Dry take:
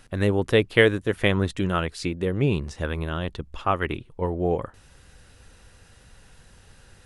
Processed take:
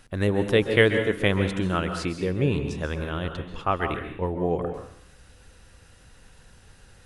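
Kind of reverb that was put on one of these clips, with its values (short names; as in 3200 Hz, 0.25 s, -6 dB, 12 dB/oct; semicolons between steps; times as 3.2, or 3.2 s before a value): plate-style reverb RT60 0.67 s, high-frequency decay 0.9×, pre-delay 0.12 s, DRR 6.5 dB; gain -1.5 dB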